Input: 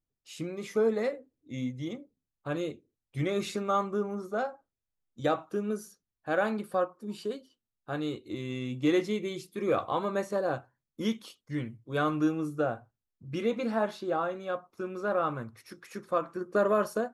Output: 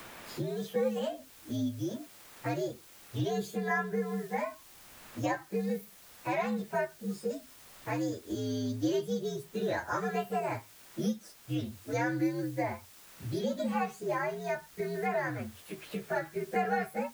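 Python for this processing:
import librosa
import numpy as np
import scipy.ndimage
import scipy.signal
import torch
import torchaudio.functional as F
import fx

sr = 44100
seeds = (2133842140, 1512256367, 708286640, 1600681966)

y = fx.partial_stretch(x, sr, pct=122)
y = fx.quant_dither(y, sr, seeds[0], bits=10, dither='triangular')
y = fx.band_squash(y, sr, depth_pct=70)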